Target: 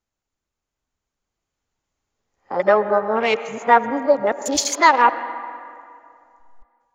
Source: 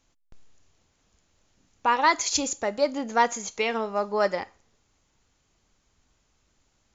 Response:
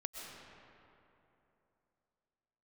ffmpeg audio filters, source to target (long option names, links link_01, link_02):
-filter_complex "[0:a]areverse,afwtdn=0.02,dynaudnorm=framelen=620:gausssize=5:maxgain=7dB,asplit=2[link_01][link_02];[link_02]highpass=290,lowpass=2500[link_03];[1:a]atrim=start_sample=2205,asetrate=57330,aresample=44100[link_04];[link_03][link_04]afir=irnorm=-1:irlink=0,volume=-3dB[link_05];[link_01][link_05]amix=inputs=2:normalize=0"